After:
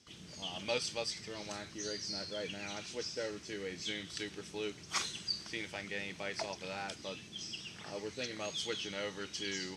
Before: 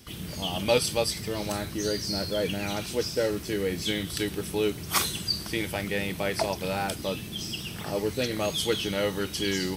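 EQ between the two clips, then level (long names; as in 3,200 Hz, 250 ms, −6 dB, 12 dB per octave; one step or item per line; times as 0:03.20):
high-pass filter 150 Hz 6 dB per octave
dynamic equaliser 2,000 Hz, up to +5 dB, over −45 dBFS, Q 0.89
transistor ladder low-pass 7,500 Hz, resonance 45%
−4.5 dB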